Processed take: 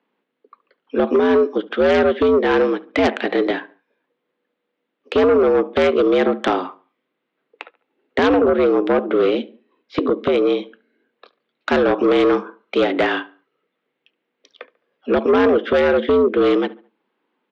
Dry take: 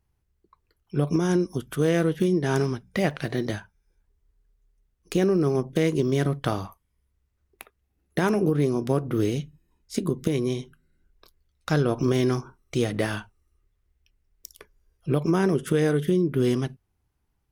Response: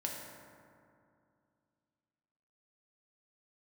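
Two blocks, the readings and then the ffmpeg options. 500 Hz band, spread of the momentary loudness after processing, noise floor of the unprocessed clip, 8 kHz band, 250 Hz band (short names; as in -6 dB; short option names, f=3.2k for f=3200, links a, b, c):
+10.5 dB, 9 LU, -74 dBFS, n/a, +5.0 dB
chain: -filter_complex "[0:a]asplit=2[a][b];[b]adelay=71,lowpass=f=2.6k:p=1,volume=-20dB,asplit=2[c][d];[d]adelay=71,lowpass=f=2.6k:p=1,volume=0.39,asplit=2[e][f];[f]adelay=71,lowpass=f=2.6k:p=1,volume=0.39[g];[a][c][e][g]amix=inputs=4:normalize=0,highpass=f=190:t=q:w=0.5412,highpass=f=190:t=q:w=1.307,lowpass=f=3.6k:t=q:w=0.5176,lowpass=f=3.6k:t=q:w=0.7071,lowpass=f=3.6k:t=q:w=1.932,afreqshift=76,aeval=exprs='0.251*sin(PI/2*2*val(0)/0.251)':c=same,volume=1.5dB"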